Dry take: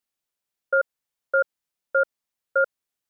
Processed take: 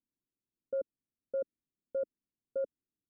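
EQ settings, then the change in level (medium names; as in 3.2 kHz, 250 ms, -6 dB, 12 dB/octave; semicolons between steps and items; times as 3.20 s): four-pole ladder low-pass 360 Hz, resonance 40%; +9.5 dB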